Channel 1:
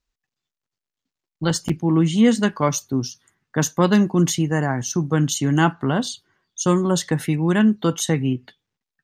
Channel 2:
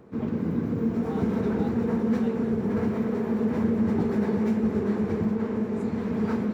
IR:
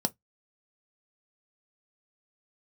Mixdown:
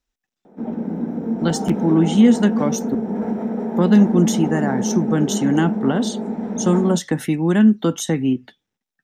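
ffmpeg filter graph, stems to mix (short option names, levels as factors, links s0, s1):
-filter_complex "[0:a]acrossover=split=370[s0][s1];[s1]acompressor=threshold=0.0708:ratio=6[s2];[s0][s2]amix=inputs=2:normalize=0,volume=0.944,asplit=3[s3][s4][s5];[s3]atrim=end=2.95,asetpts=PTS-STARTPTS,afade=t=out:st=2.946:d=0.004:c=hsin[s6];[s4]atrim=start=2.95:end=3.76,asetpts=PTS-STARTPTS,volume=0[s7];[s5]atrim=start=3.76,asetpts=PTS-STARTPTS,afade=t=in:d=0.004:c=hsin[s8];[s6][s7][s8]concat=n=3:v=0:a=1,asplit=2[s9][s10];[s10]volume=0.15[s11];[1:a]equalizer=f=750:t=o:w=1.1:g=9.5,adelay=450,volume=0.398,asplit=2[s12][s13];[s13]volume=0.422[s14];[2:a]atrim=start_sample=2205[s15];[s11][s14]amix=inputs=2:normalize=0[s16];[s16][s15]afir=irnorm=-1:irlink=0[s17];[s9][s12][s17]amix=inputs=3:normalize=0"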